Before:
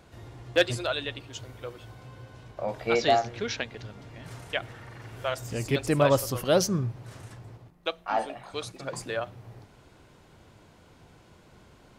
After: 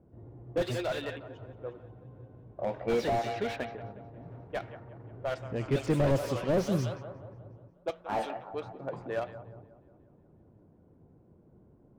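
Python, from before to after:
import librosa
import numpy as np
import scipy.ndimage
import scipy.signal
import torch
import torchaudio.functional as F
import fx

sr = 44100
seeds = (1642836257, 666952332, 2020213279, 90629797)

y = fx.low_shelf(x, sr, hz=83.0, db=-10.0)
y = fx.echo_thinned(y, sr, ms=180, feedback_pct=76, hz=390.0, wet_db=-13.0)
y = fx.dynamic_eq(y, sr, hz=1200.0, q=1.9, threshold_db=-42.0, ratio=4.0, max_db=-4)
y = fx.env_lowpass(y, sr, base_hz=350.0, full_db=-22.0)
y = fx.slew_limit(y, sr, full_power_hz=33.0)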